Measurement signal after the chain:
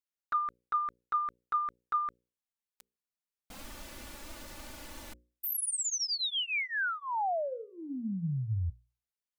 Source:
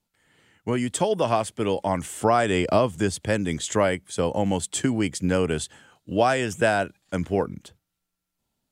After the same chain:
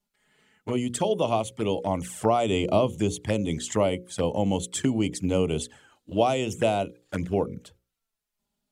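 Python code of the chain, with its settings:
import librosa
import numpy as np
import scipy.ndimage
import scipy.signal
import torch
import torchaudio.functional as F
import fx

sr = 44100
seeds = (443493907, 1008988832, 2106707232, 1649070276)

y = fx.env_flanger(x, sr, rest_ms=4.9, full_db=-21.5)
y = fx.hum_notches(y, sr, base_hz=60, count=9)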